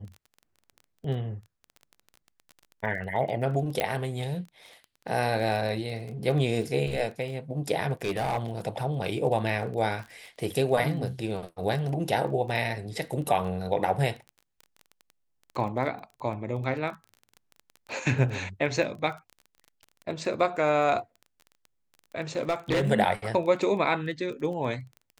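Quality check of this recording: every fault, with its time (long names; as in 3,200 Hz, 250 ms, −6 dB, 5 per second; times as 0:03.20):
surface crackle 18 per second −36 dBFS
0:03.80: click −12 dBFS
0:08.02–0:08.39: clipping −23.5 dBFS
0:22.36–0:22.84: clipping −21 dBFS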